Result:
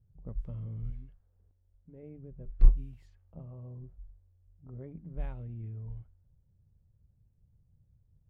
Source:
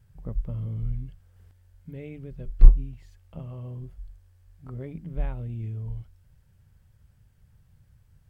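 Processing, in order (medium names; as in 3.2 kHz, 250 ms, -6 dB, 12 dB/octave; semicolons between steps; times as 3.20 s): level-controlled noise filter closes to 450 Hz, open at -21.5 dBFS; 0.90–2.03 s: peaking EQ 120 Hz -8 dB 1.8 oct; trim -7.5 dB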